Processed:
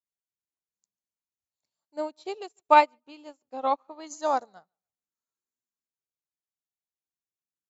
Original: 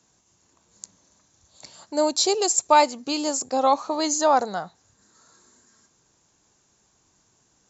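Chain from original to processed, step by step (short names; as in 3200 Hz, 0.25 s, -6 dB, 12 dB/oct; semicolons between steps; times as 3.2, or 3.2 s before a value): vibrato 1.1 Hz 13 cents; 1.96–4.07 resonant high shelf 4000 Hz -11 dB, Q 1.5; tape echo 0.146 s, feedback 30%, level -19 dB, low-pass 5100 Hz; upward expander 2.5:1, over -40 dBFS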